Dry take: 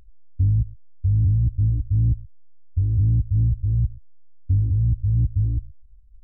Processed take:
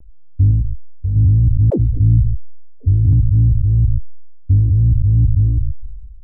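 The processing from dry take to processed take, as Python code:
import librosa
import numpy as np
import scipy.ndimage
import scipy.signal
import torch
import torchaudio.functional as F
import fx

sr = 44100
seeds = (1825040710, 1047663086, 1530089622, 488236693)

p1 = fx.wiener(x, sr, points=15)
p2 = fx.env_lowpass(p1, sr, base_hz=440.0, full_db=-15.0)
p3 = fx.peak_eq(p2, sr, hz=100.0, db=-7.5, octaves=1.2, at=(0.51, 1.16))
p4 = fx.vibrato(p3, sr, rate_hz=0.72, depth_cents=26.0)
p5 = 10.0 ** (-14.5 / 20.0) * np.tanh(p4 / 10.0 ** (-14.5 / 20.0))
p6 = p4 + (p5 * 10.0 ** (-3.5 / 20.0))
p7 = fx.dispersion(p6, sr, late='lows', ms=100.0, hz=310.0, at=(1.7, 3.13))
p8 = fx.sustainer(p7, sr, db_per_s=39.0)
y = p8 * 10.0 ** (3.0 / 20.0)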